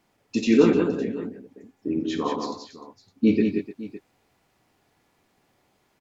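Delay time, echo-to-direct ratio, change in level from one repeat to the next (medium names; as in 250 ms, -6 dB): 53 ms, -3.0 dB, no regular repeats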